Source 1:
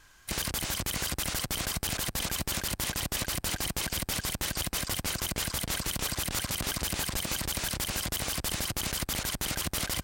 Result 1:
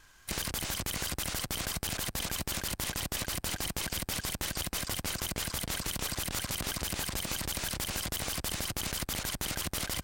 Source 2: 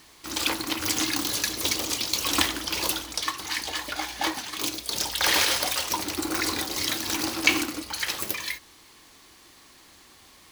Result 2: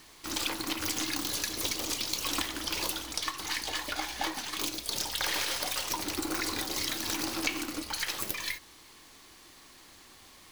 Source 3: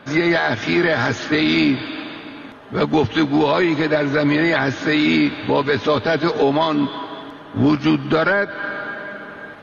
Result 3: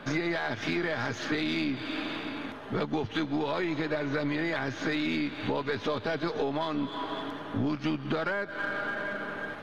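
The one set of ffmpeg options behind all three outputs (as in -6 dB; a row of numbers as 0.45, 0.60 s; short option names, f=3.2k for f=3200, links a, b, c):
-af "aeval=exprs='if(lt(val(0),0),0.708*val(0),val(0))':c=same,acompressor=threshold=-29dB:ratio=4"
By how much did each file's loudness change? -2.5, -6.0, -13.0 LU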